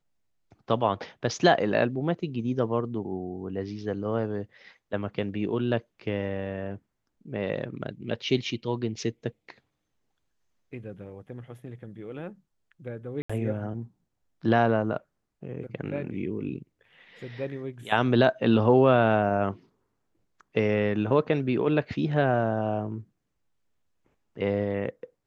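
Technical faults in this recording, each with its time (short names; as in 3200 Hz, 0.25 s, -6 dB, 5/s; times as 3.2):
13.22–13.29 gap 75 ms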